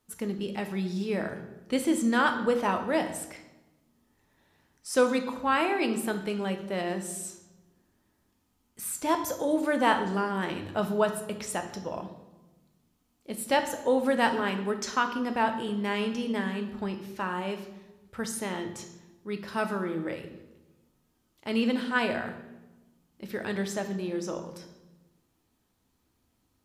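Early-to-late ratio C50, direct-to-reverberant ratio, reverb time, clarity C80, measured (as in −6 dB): 9.5 dB, 6.0 dB, 1.1 s, 12.5 dB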